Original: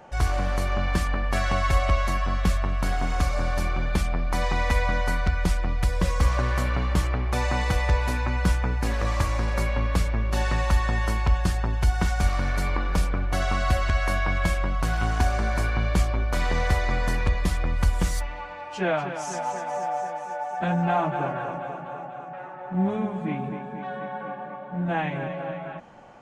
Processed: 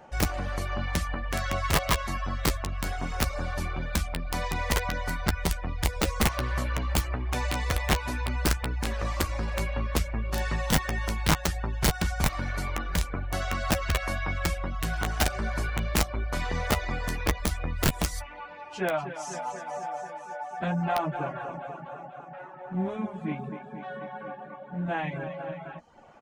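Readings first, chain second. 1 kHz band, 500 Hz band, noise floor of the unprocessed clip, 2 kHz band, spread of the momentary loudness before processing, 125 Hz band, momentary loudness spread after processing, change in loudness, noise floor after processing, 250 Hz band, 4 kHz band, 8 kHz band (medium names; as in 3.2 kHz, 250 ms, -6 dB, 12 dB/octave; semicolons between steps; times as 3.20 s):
-4.0 dB, -3.5 dB, -38 dBFS, -2.5 dB, 10 LU, -5.0 dB, 12 LU, -4.0 dB, -44 dBFS, -3.0 dB, +2.0 dB, +4.0 dB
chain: reverb removal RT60 0.64 s; integer overflow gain 14 dB; doubling 13 ms -10 dB; trim -3 dB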